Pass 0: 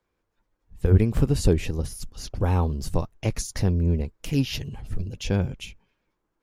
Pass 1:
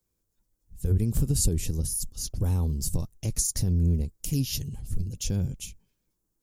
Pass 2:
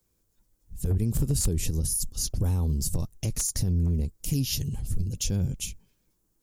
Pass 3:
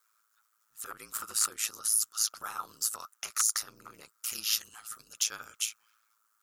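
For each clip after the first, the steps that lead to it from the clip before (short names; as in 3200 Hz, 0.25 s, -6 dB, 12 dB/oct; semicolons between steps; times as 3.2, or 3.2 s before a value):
high shelf 5500 Hz +8.5 dB; limiter -14 dBFS, peak gain reduction 8.5 dB; EQ curve 160 Hz 0 dB, 890 Hz -13 dB, 2300 Hz -13 dB, 7500 Hz +4 dB
one-sided fold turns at -17.5 dBFS; in parallel at 0 dB: compressor, threshold -33 dBFS, peak gain reduction 13.5 dB; on the sum: limiter -17.5 dBFS, peak gain reduction 7 dB
resonant high-pass 1300 Hz, resonance Q 13; ring modulator 55 Hz; gain +4.5 dB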